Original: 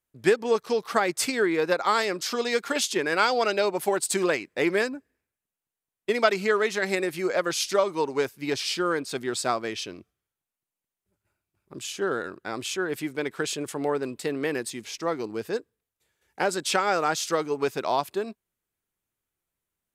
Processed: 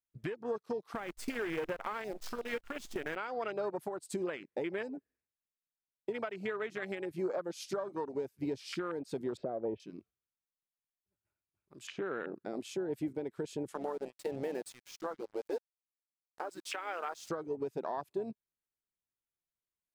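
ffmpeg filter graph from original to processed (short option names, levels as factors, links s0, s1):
-filter_complex "[0:a]asettb=1/sr,asplit=3[s0][s1][s2];[s0]atrim=end=0.954[s3];[s1]atrim=start=0.95:end=3.16,asetpts=PTS-STARTPTS,afade=t=in:d=0.004:c=qsin,afade=t=out:st=2.206:d=0.004:c=qsin,lowshelf=f=120:g=-3,acrusher=bits=5:dc=4:mix=0:aa=0.000001[s4];[s2]atrim=start=3.156[s5];[s3][s4]acrossfade=d=0.004:c1=hsin:c2=qsin[s6];[s6][s5]acrossfade=d=0.004:c1=qsin:c2=hsin,asettb=1/sr,asplit=3[s7][s8][s9];[s7]atrim=end=9.374[s10];[s8]atrim=start=9.37:end=9.8,asetpts=PTS-STARTPTS,afade=t=in:d=0.004:c=qsin,afade=t=out:st=0.426:d=0.004:c=qsin,lowpass=f=2900:w=0.5412,lowpass=f=2900:w=1.3066,lowshelf=f=790:t=q:w=3:g=10.5[s11];[s9]atrim=start=9.796[s12];[s10][s11]acrossfade=d=0.004:c1=hsin:c2=qsin[s13];[s13][s12]acrossfade=d=0.004:c1=qsin:c2=hsin,asettb=1/sr,asplit=3[s14][s15][s16];[s14]atrim=end=11.874[s17];[s15]atrim=start=11.87:end=12.36,asetpts=PTS-STARTPTS,afade=t=in:d=0.004:c=qsin,afade=t=out:st=0.486:d=0.004:c=qsin,highpass=130,lowpass=2600,acontrast=45[s18];[s16]atrim=start=12.356[s19];[s17][s18]acrossfade=d=0.004:c1=hsin:c2=qsin[s20];[s20][s19]acrossfade=d=0.004:c1=qsin:c2=hsin,asettb=1/sr,asplit=3[s21][s22][s23];[s21]atrim=end=13.744[s24];[s22]atrim=start=13.74:end=17.29,asetpts=PTS-STARTPTS,afade=t=in:d=0.004:c=qsin,afade=t=out:st=3.546:d=0.004:c=qsin,equalizer=f=130:w=0.38:g=-13,acrusher=bits=5:mix=0:aa=0.5[s25];[s23]atrim=start=17.286[s26];[s24][s25]acrossfade=d=0.004:c1=hsin:c2=qsin[s27];[s27][s26]acrossfade=d=0.004:c1=qsin:c2=hsin,afwtdn=0.0398,acompressor=threshold=0.0224:ratio=6,alimiter=level_in=1.58:limit=0.0631:level=0:latency=1:release=374,volume=0.631,volume=1.26"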